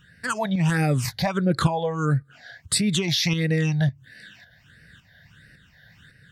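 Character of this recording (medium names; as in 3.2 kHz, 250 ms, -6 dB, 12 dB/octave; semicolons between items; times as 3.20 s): phasing stages 8, 1.5 Hz, lowest notch 340–1000 Hz; tremolo saw up 1.8 Hz, depth 50%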